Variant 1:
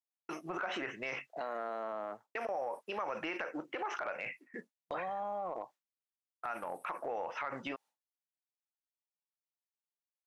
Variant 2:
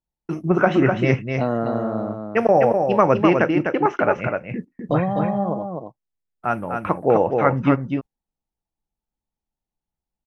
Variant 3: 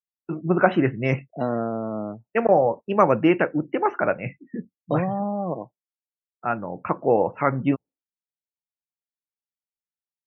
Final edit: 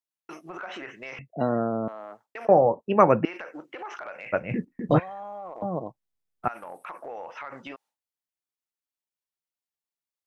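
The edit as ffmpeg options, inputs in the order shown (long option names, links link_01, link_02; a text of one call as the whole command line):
ffmpeg -i take0.wav -i take1.wav -i take2.wav -filter_complex "[2:a]asplit=2[link_01][link_02];[1:a]asplit=2[link_03][link_04];[0:a]asplit=5[link_05][link_06][link_07][link_08][link_09];[link_05]atrim=end=1.192[link_10];[link_01]atrim=start=1.188:end=1.882[link_11];[link_06]atrim=start=1.878:end=2.482[link_12];[link_02]atrim=start=2.478:end=3.252[link_13];[link_07]atrim=start=3.248:end=4.34[link_14];[link_03]atrim=start=4.32:end=5[link_15];[link_08]atrim=start=4.98:end=5.622[link_16];[link_04]atrim=start=5.618:end=6.482[link_17];[link_09]atrim=start=6.478[link_18];[link_10][link_11]acrossfade=duration=0.004:curve1=hsin:curve2=hsin[link_19];[link_19][link_12]acrossfade=duration=0.004:curve1=hsin:curve2=hsin[link_20];[link_20][link_13]acrossfade=duration=0.004:curve1=hsin:curve2=hsin[link_21];[link_21][link_14]acrossfade=duration=0.004:curve1=hsin:curve2=hsin[link_22];[link_22][link_15]acrossfade=duration=0.02:curve1=tri:curve2=tri[link_23];[link_23][link_16]acrossfade=duration=0.02:curve1=tri:curve2=tri[link_24];[link_24][link_17]acrossfade=duration=0.004:curve1=hsin:curve2=hsin[link_25];[link_25][link_18]acrossfade=duration=0.004:curve1=hsin:curve2=hsin" out.wav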